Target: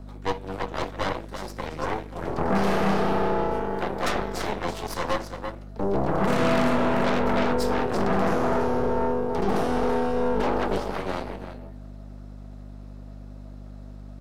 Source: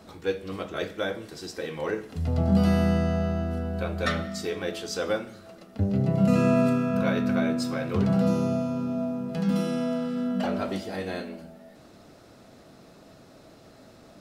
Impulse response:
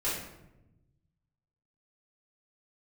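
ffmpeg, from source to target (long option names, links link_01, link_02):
-filter_complex "[0:a]highpass=frequency=120:width=0.5412,highpass=frequency=120:width=1.3066,bandreject=frequency=450:width=12,aecho=1:1:336:0.398,aeval=exprs='0.251*(cos(1*acos(clip(val(0)/0.251,-1,1)))-cos(1*PI/2))+0.02*(cos(3*acos(clip(val(0)/0.251,-1,1)))-cos(3*PI/2))+0.0891*(cos(8*acos(clip(val(0)/0.251,-1,1)))-cos(8*PI/2))':channel_layout=same,aeval=exprs='val(0)+0.0224*(sin(2*PI*50*n/s)+sin(2*PI*2*50*n/s)/2+sin(2*PI*3*50*n/s)/3+sin(2*PI*4*50*n/s)/4+sin(2*PI*5*50*n/s)/5)':channel_layout=same,acrossover=split=260|1400[link_01][link_02][link_03];[link_02]acontrast=84[link_04];[link_01][link_04][link_03]amix=inputs=3:normalize=0,volume=-6.5dB"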